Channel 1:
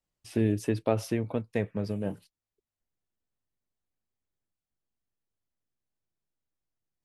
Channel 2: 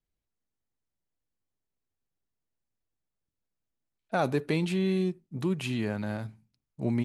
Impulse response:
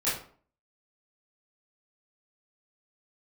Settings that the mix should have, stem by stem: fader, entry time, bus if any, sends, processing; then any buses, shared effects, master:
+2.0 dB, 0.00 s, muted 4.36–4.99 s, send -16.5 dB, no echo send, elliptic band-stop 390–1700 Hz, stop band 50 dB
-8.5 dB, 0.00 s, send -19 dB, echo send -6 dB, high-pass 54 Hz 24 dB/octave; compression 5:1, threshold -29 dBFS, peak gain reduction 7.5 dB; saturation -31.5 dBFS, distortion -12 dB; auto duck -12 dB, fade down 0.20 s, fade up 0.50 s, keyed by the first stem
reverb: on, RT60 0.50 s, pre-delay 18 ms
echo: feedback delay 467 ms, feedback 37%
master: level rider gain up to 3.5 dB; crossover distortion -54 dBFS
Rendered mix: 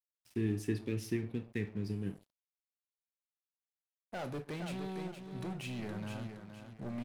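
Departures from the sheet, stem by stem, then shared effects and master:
stem 1 +2.0 dB -> -8.5 dB; stem 2: missing compression 5:1, threshold -29 dBFS, peak gain reduction 7.5 dB

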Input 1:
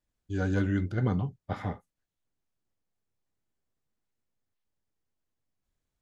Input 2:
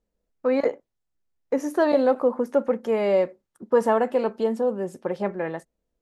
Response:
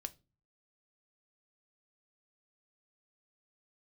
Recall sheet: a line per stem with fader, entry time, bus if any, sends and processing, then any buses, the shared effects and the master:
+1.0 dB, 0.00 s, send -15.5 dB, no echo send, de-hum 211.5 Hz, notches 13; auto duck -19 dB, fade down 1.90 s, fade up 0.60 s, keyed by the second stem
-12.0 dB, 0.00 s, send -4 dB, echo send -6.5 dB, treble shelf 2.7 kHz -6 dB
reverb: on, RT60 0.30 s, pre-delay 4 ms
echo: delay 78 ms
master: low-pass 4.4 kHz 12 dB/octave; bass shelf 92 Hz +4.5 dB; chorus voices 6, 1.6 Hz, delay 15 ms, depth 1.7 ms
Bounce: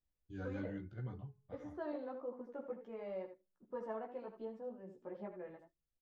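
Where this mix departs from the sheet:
stem 1 +1.0 dB -> -9.0 dB; stem 2 -12.0 dB -> -23.0 dB

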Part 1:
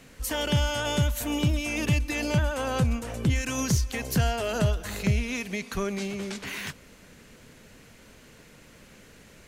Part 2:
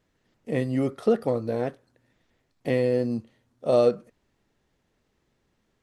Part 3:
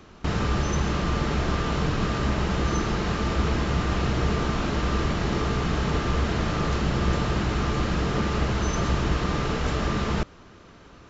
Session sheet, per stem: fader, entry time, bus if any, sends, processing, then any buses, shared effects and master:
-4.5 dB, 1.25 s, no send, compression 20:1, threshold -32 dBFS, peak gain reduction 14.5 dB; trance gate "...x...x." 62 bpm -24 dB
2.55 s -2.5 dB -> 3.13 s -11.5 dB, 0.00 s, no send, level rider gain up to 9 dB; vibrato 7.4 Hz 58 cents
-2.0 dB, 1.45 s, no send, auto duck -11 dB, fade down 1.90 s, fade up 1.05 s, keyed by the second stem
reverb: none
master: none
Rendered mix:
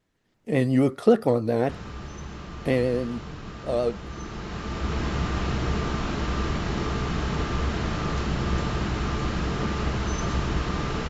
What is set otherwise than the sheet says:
stem 1: muted; master: extra peaking EQ 530 Hz -2.5 dB 0.41 oct

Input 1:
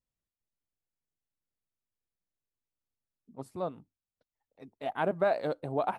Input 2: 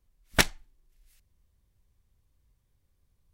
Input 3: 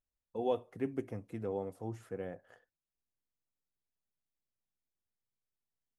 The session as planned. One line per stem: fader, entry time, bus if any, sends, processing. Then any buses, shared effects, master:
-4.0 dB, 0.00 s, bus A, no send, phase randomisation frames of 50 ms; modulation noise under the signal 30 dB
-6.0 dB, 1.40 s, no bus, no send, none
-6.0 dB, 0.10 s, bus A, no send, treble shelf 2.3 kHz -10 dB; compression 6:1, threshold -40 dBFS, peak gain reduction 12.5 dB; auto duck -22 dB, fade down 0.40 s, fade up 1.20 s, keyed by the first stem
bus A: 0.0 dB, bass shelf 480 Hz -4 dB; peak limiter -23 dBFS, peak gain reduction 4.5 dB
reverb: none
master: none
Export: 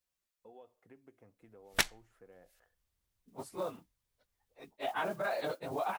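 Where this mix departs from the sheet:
stem 1 -4.0 dB -> +6.0 dB; master: extra bass shelf 470 Hz -9.5 dB

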